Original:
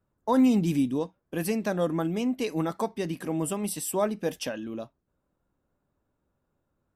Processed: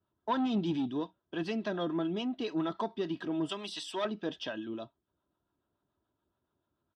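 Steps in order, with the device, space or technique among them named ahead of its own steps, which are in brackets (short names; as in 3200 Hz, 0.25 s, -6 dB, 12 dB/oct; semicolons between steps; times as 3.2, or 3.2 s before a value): comb 3.1 ms, depth 45%; guitar amplifier with harmonic tremolo (harmonic tremolo 7 Hz, depth 50%, crossover 550 Hz; soft clip -21 dBFS, distortion -13 dB; speaker cabinet 100–4300 Hz, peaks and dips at 260 Hz -6 dB, 560 Hz -6 dB, 2200 Hz -10 dB, 3400 Hz +8 dB); 3.49–4.05 tilt +3.5 dB/oct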